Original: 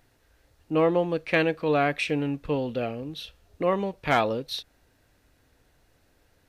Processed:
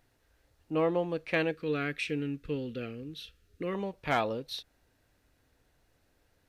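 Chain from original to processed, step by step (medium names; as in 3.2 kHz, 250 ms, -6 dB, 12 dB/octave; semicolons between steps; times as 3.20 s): 1.51–3.75 s: high-order bell 780 Hz -14 dB 1.1 oct; trim -6 dB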